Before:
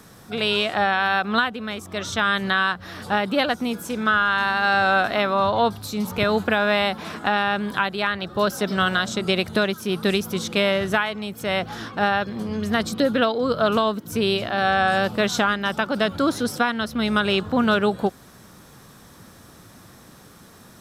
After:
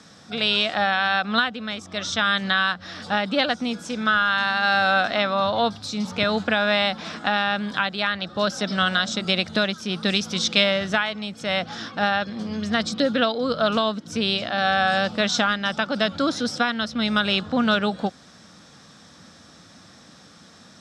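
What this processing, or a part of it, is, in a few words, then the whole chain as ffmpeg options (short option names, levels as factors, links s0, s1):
car door speaker: -filter_complex "[0:a]asettb=1/sr,asplit=3[s0][s1][s2];[s0]atrim=end=10.164[s3];[s1]atrim=start=10.16:end=10.64,asetpts=PTS-STARTPTS,afade=t=in:d=0.004:c=qsin,afade=t=out:st=0.476:d=0.004:c=qsin,equalizer=f=4200:w=0.57:g=5[s4];[s2]atrim=start=10.636[s5];[s3][s4]acrossfade=d=0.004:c1=hsin:c2=qsin[s6];[s6][s5]acrossfade=d=0.004:c1=qsin:c2=hsin,highpass=100,equalizer=f=120:t=q:w=4:g=-8,equalizer=f=390:t=q:w=4:g=-9,equalizer=f=980:t=q:w=4:g=-5,equalizer=f=3600:t=q:w=4:g=4,equalizer=f=5200:t=q:w=4:g=6,lowpass=f=7600:w=0.5412,lowpass=f=7600:w=1.3066"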